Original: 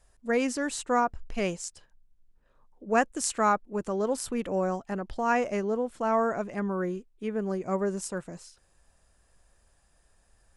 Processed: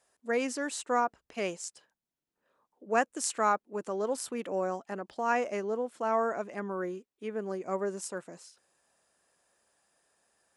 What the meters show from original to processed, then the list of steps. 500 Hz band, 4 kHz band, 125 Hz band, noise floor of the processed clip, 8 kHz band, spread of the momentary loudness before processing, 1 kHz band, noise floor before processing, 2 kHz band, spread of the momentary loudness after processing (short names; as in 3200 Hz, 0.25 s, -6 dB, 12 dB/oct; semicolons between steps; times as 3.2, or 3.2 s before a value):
-3.0 dB, -2.5 dB, n/a, under -85 dBFS, -2.5 dB, 10 LU, -2.5 dB, -66 dBFS, -2.5 dB, 10 LU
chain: HPF 270 Hz 12 dB/oct; gain -2.5 dB